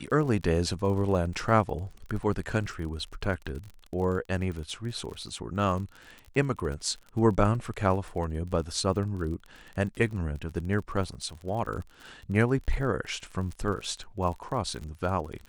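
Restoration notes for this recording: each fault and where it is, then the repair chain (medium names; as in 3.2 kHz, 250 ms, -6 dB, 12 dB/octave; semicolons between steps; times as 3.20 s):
crackle 36 per s -36 dBFS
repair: de-click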